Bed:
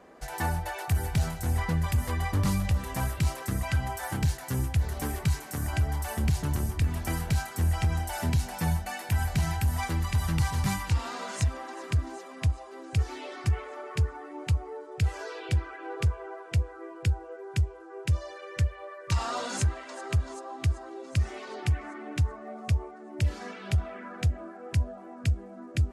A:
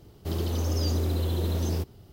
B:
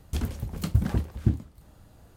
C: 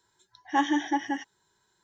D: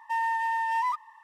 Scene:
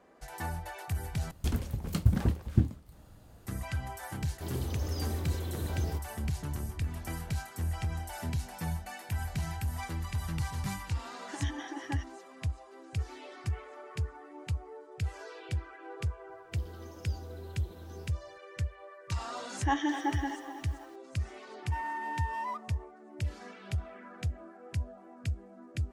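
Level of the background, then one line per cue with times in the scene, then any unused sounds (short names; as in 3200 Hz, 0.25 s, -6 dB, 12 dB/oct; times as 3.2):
bed -7.5 dB
1.31 replace with B -1.5 dB
4.15 add A -8.5 dB
10.8 add C -10.5 dB + negative-ratio compressor -27 dBFS, ratio -0.5
16.27 add A -16 dB + flange 1.4 Hz, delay 5.2 ms, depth 8.7 ms, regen -33%
19.13 add C -5 dB + lo-fi delay 0.249 s, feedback 55%, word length 8-bit, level -10.5 dB
21.62 add D -9 dB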